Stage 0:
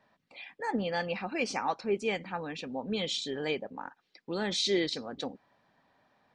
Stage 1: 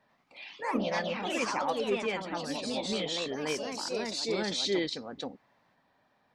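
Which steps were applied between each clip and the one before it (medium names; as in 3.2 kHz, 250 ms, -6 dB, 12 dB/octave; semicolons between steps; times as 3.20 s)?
ever faster or slower copies 90 ms, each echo +2 st, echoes 3; trim -1.5 dB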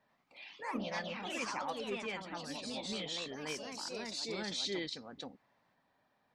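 dynamic bell 450 Hz, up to -5 dB, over -44 dBFS, Q 0.78; trim -5.5 dB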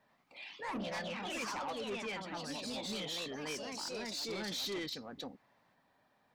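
saturation -37.5 dBFS, distortion -12 dB; trim +3 dB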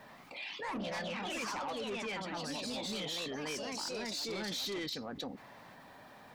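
level flattener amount 50%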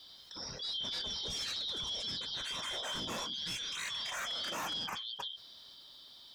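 four frequency bands reordered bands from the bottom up 3412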